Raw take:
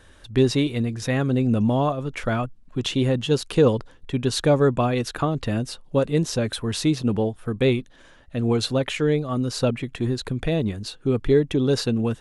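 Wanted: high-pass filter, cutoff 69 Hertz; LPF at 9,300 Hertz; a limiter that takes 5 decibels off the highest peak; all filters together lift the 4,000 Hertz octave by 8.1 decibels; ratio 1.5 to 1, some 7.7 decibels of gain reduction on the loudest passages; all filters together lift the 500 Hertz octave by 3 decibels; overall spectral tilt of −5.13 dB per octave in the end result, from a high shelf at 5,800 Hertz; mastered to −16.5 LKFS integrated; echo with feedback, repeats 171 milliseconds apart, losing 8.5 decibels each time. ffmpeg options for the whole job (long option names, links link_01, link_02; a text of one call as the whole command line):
ffmpeg -i in.wav -af "highpass=69,lowpass=9300,equalizer=frequency=500:width_type=o:gain=3.5,equalizer=frequency=4000:width_type=o:gain=8,highshelf=frequency=5800:gain=4.5,acompressor=threshold=-32dB:ratio=1.5,alimiter=limit=-16.5dB:level=0:latency=1,aecho=1:1:171|342|513|684:0.376|0.143|0.0543|0.0206,volume=10.5dB" out.wav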